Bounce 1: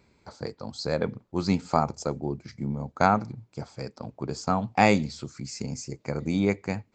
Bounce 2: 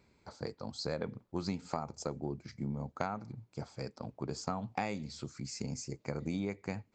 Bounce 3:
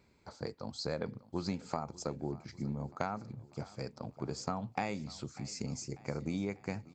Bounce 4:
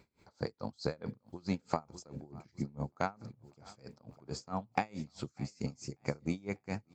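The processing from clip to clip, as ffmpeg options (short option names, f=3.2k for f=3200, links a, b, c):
-af "acompressor=threshold=-26dB:ratio=16,volume=-5dB"
-af "aecho=1:1:594|1188|1782|2376:0.1|0.056|0.0314|0.0176"
-af "aeval=exprs='val(0)*pow(10,-27*(0.5-0.5*cos(2*PI*4.6*n/s))/20)':c=same,volume=5dB"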